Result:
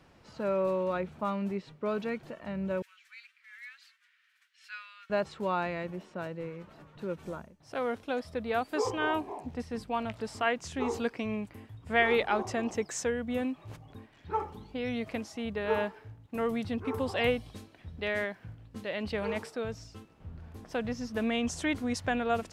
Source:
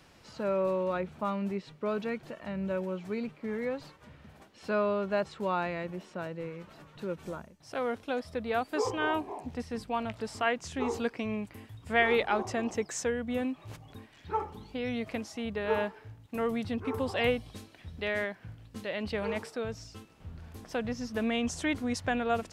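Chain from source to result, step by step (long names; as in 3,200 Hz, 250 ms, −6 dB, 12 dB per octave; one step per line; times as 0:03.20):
0:02.82–0:05.10: Butterworth high-pass 1,600 Hz 36 dB per octave
one half of a high-frequency compander decoder only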